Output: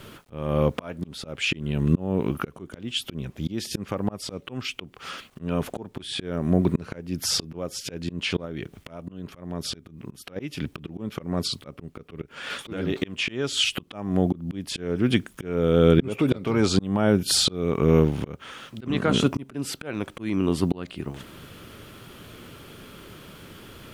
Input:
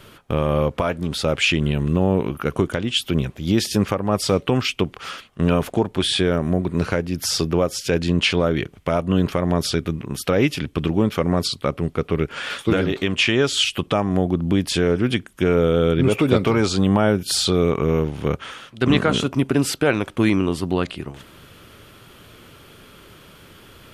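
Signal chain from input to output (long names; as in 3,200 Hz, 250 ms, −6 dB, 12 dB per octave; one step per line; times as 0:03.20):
bit reduction 10 bits
parametric band 220 Hz +4 dB 1.8 octaves
0:08.45–0:10.36: downward compressor 10 to 1, threshold −19 dBFS, peak gain reduction 10 dB
volume swells 487 ms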